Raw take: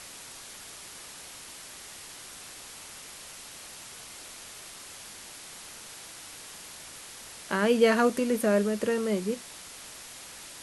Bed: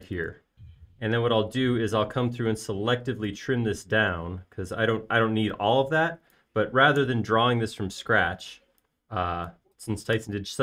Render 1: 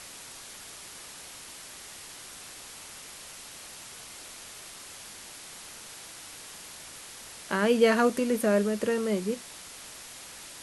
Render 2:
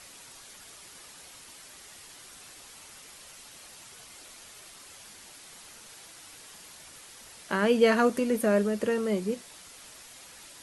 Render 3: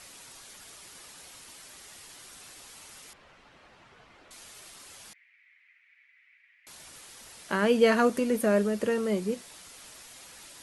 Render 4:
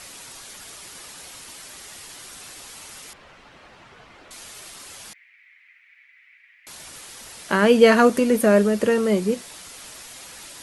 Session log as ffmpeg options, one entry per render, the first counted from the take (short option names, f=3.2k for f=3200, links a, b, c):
-af anull
-af "afftdn=nr=6:nf=-46"
-filter_complex "[0:a]asettb=1/sr,asplit=3[a][b][c];[a]atrim=end=3.134[d];[b]atrim=start=3.13:end=4.31,asetpts=PTS-STARTPTS,afade=t=in:d=0.004:c=qsin,afade=t=out:st=1.176:d=0.004:c=qsin,lowpass=2k[e];[c]atrim=start=4.306[f];[d][e]acrossfade=d=0.004:c1=hsin:c2=qsin[g];[g][f]acrossfade=d=0.004:c1=qsin:c2=hsin,asettb=1/sr,asplit=3[h][i][j];[h]atrim=end=5.134[k];[i]atrim=start=5.13:end=6.67,asetpts=PTS-STARTPTS,afade=t=in:d=0.004:c=qsin,afade=t=out:st=1.536:d=0.004:c=qsin,asuperpass=centerf=2100:order=4:qfactor=4[l];[j]atrim=start=6.666[m];[k][l]acrossfade=d=0.004:c1=hsin:c2=qsin[n];[n][m]acrossfade=d=0.004:c1=qsin:c2=hsin"
-af "volume=8dB"